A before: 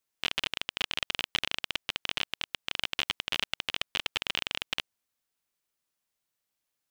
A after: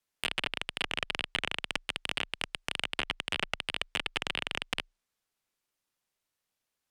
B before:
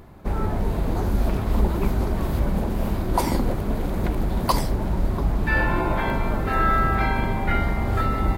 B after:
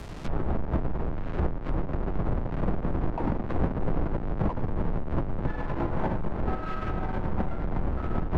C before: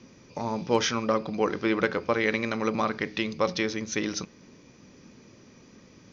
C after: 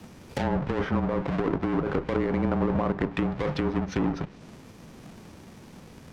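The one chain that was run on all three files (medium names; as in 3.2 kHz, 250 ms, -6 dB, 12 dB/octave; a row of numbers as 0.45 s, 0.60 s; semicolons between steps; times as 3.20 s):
square wave that keeps the level; compressor with a negative ratio -23 dBFS, ratio -1; frequency shift -29 Hz; low-pass that closes with the level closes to 1.1 kHz, closed at -20.5 dBFS; peak normalisation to -12 dBFS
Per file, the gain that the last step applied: -3.5 dB, -3.0 dB, -1.0 dB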